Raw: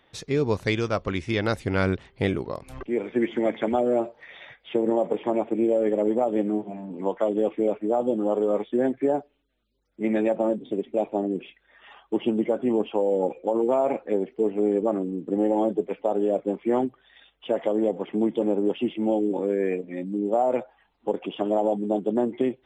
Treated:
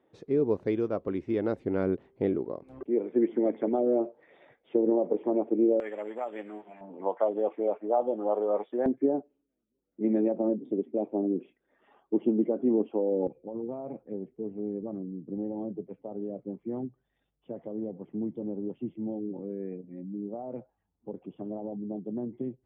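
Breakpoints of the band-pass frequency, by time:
band-pass, Q 1.3
350 Hz
from 5.8 s 1800 Hz
from 6.81 s 760 Hz
from 8.86 s 290 Hz
from 13.27 s 110 Hz

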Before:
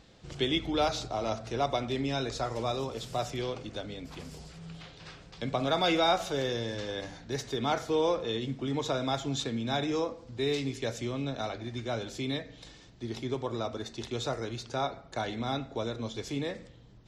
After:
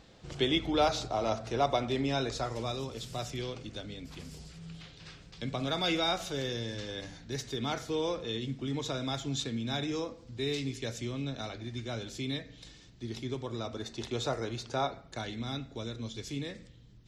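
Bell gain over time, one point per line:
bell 760 Hz 2.1 oct
2.19 s +1.5 dB
2.78 s -7.5 dB
13.55 s -7.5 dB
14.03 s +0.5 dB
14.81 s +0.5 dB
15.35 s -11 dB

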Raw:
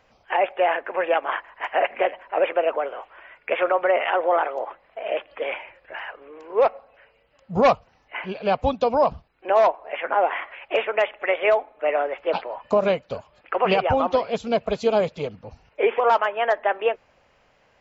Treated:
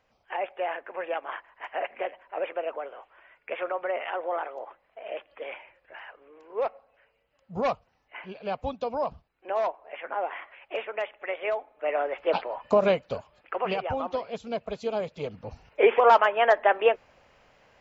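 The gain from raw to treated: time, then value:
11.55 s -10 dB
12.22 s -1.5 dB
13.15 s -1.5 dB
13.74 s -9.5 dB
15.06 s -9.5 dB
15.46 s +1 dB

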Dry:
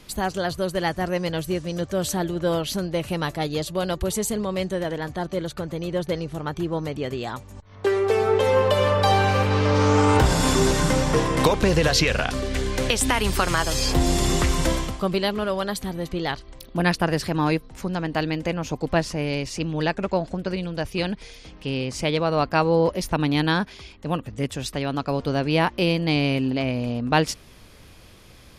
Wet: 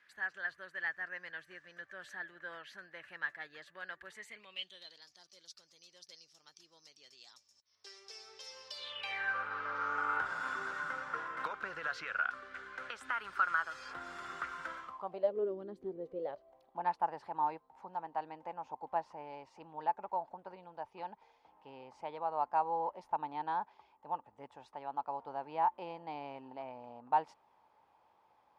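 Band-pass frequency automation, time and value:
band-pass, Q 9.8
4.13 s 1700 Hz
5.09 s 5300 Hz
8.7 s 5300 Hz
9.35 s 1400 Hz
14.81 s 1400 Hz
15.59 s 300 Hz
16.78 s 870 Hz

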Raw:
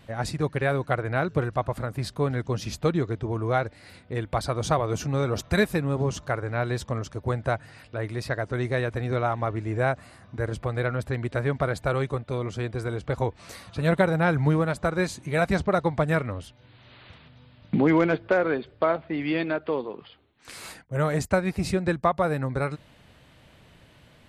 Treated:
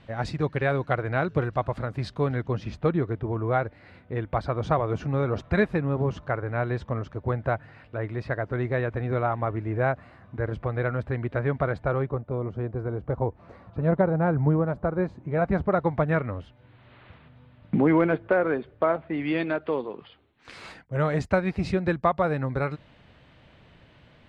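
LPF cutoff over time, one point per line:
2.24 s 4100 Hz
2.64 s 2200 Hz
11.68 s 2200 Hz
12.25 s 1000 Hz
15.26 s 1000 Hz
15.92 s 2100 Hz
18.89 s 2100 Hz
19.43 s 3700 Hz

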